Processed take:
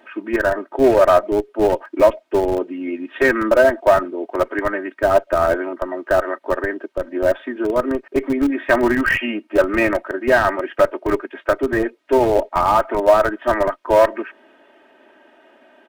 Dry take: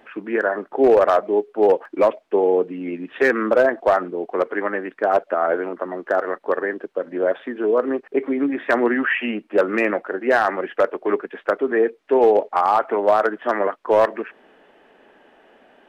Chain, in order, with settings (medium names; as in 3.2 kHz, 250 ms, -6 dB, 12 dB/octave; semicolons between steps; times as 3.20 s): high-pass 190 Hz 6 dB/octave; comb 3.2 ms, depth 80%; in parallel at -9 dB: Schmitt trigger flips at -13 dBFS